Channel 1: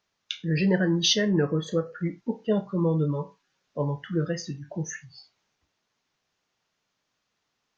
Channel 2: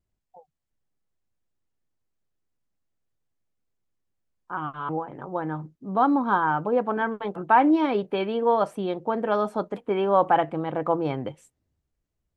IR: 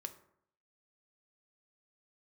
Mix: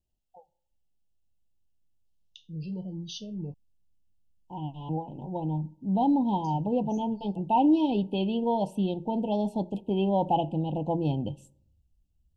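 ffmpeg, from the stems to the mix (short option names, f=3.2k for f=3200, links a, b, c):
-filter_complex "[0:a]adelay=2050,volume=-18dB,asplit=3[a][b][c];[a]atrim=end=3.54,asetpts=PTS-STARTPTS,afade=t=out:st=3.536:d=0.004:c=hsin[d];[b]atrim=start=3.54:end=6.44,asetpts=PTS-STARTPTS,volume=0[e];[c]atrim=start=6.44,asetpts=PTS-STARTPTS,afade=t=in:d=0.004:c=hsin[f];[d][e][f]concat=n=3:v=0:a=1[g];[1:a]equalizer=f=125:t=o:w=0.33:g=-9,equalizer=f=400:t=o:w=0.33:g=-3,equalizer=f=2.5k:t=o:w=0.33:g=10,volume=-5.5dB,asplit=2[h][i];[i]volume=-4dB[j];[2:a]atrim=start_sample=2205[k];[j][k]afir=irnorm=-1:irlink=0[l];[g][h][l]amix=inputs=3:normalize=0,asubboost=boost=5.5:cutoff=190,asuperstop=centerf=1600:order=20:qfactor=0.9"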